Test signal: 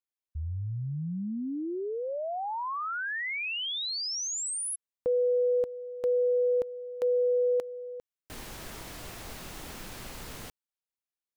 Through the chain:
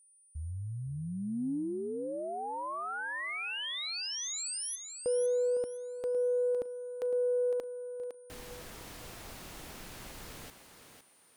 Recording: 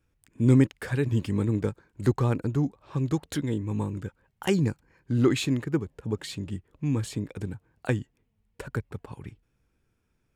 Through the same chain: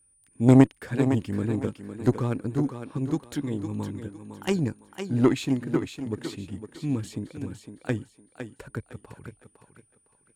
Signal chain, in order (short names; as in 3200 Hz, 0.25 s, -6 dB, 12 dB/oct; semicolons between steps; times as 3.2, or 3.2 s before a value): dynamic EQ 270 Hz, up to +5 dB, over -41 dBFS, Q 2; whine 9300 Hz -56 dBFS; added harmonics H 2 -29 dB, 3 -14 dB, 5 -44 dB, 7 -43 dB, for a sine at -5.5 dBFS; on a send: thinning echo 0.508 s, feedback 30%, high-pass 200 Hz, level -7.5 dB; on the sum: gain +3.5 dB